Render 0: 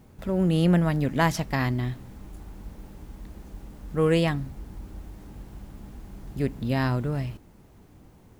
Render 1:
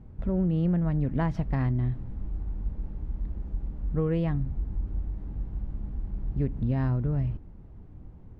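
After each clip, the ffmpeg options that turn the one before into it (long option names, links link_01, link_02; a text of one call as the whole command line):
ffmpeg -i in.wav -af "lowpass=frequency=1600:poles=1,aemphasis=mode=reproduction:type=bsi,acompressor=threshold=-18dB:ratio=6,volume=-4dB" out.wav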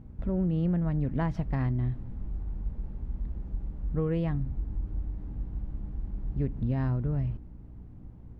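ffmpeg -i in.wav -af "aeval=exprs='val(0)+0.00501*(sin(2*PI*60*n/s)+sin(2*PI*2*60*n/s)/2+sin(2*PI*3*60*n/s)/3+sin(2*PI*4*60*n/s)/4+sin(2*PI*5*60*n/s)/5)':channel_layout=same,volume=-2dB" out.wav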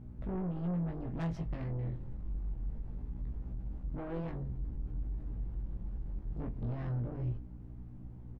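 ffmpeg -i in.wav -filter_complex "[0:a]asoftclip=type=tanh:threshold=-33dB,flanger=delay=16:depth=2.5:speed=0.25,asplit=2[link_01][link_02];[link_02]adelay=24,volume=-11.5dB[link_03];[link_01][link_03]amix=inputs=2:normalize=0,volume=1.5dB" out.wav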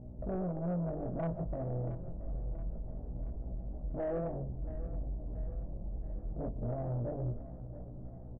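ffmpeg -i in.wav -af "lowpass=frequency=630:width_type=q:width=4.9,asoftclip=type=tanh:threshold=-28dB,aecho=1:1:678|1356|2034|2712|3390|4068:0.188|0.105|0.0591|0.0331|0.0185|0.0104" out.wav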